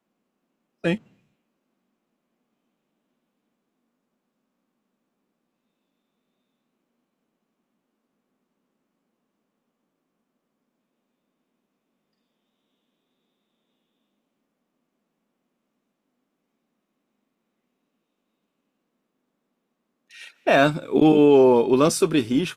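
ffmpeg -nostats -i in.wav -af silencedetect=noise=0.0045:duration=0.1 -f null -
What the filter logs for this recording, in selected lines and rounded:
silence_start: 0.00
silence_end: 0.84 | silence_duration: 0.84
silence_start: 0.99
silence_end: 20.11 | silence_duration: 19.12
silence_start: 20.31
silence_end: 20.46 | silence_duration: 0.15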